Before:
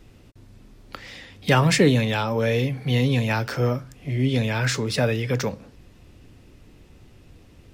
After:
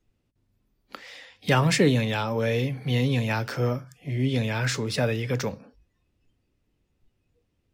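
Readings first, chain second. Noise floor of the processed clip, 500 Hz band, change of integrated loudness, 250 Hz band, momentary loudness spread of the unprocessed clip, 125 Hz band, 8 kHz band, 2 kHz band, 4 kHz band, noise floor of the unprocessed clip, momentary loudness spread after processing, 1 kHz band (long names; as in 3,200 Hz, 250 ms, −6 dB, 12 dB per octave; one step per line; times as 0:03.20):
−74 dBFS, −3.0 dB, −3.0 dB, −3.0 dB, 15 LU, −3.0 dB, −3.0 dB, −3.0 dB, −3.0 dB, −51 dBFS, 13 LU, −3.0 dB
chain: mains hum 50 Hz, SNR 35 dB
noise reduction from a noise print of the clip's start 20 dB
level −3 dB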